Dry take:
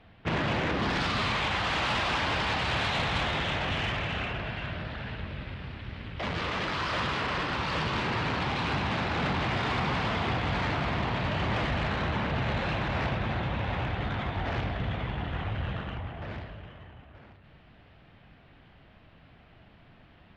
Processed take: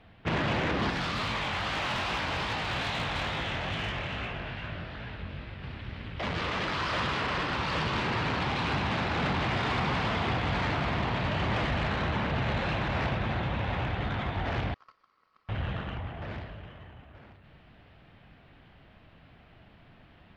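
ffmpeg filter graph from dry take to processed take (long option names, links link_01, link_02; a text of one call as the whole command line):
ffmpeg -i in.wav -filter_complex "[0:a]asettb=1/sr,asplit=3[link_01][link_02][link_03];[link_01]atrim=end=0.904[link_04];[link_02]atrim=start=0.9:end=5.63,asetpts=PTS-STARTPTS,afade=type=in:duration=0.004:curve=qsin,afade=type=out:start_time=4.726:duration=0.004:curve=qsin,flanger=delay=17.5:depth=6.3:speed=2.4,volume=25dB,asoftclip=hard,volume=-25dB[link_05];[link_03]atrim=start=5.626[link_06];[link_04][link_05]acrossfade=duration=0.004:curve1=hsin:curve2=qsin[link_07];[link_07][link_06]acrossfade=duration=0.004:curve1=qsin:curve2=hsin,asettb=1/sr,asplit=3[link_08][link_09][link_10];[link_08]atrim=end=14.744[link_11];[link_09]atrim=start=14.74:end=15.49,asetpts=PTS-STARTPTS,afade=type=in:duration=0.004:curve=qsin,afade=type=out:start_time=0.746:duration=0.004:curve=qsin,agate=range=-35dB:threshold=-27dB:ratio=16:release=100:detection=peak,highshelf=frequency=3300:width_type=q:width=1.5:gain=8.5,aeval=exprs='val(0)*sin(2*PI*1200*n/s)':channel_layout=same[link_12];[link_10]atrim=start=15.486[link_13];[link_11][link_12]acrossfade=duration=0.004:curve1=hsin:curve2=qsin[link_14];[link_14][link_13]acrossfade=duration=0.004:curve1=qsin:curve2=hsin" out.wav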